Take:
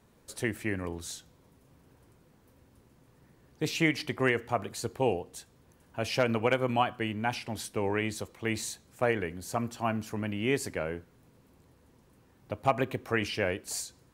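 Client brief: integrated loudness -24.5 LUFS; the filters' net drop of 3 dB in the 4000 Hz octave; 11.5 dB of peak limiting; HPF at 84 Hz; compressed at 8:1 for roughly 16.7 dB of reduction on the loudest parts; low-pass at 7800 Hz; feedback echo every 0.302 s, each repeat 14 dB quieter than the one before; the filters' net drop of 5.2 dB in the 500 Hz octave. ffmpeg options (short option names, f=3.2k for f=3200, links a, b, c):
-af "highpass=84,lowpass=7.8k,equalizer=f=500:t=o:g=-6.5,equalizer=f=4k:t=o:g=-4,acompressor=threshold=-40dB:ratio=8,alimiter=level_in=11dB:limit=-24dB:level=0:latency=1,volume=-11dB,aecho=1:1:302|604:0.2|0.0399,volume=23dB"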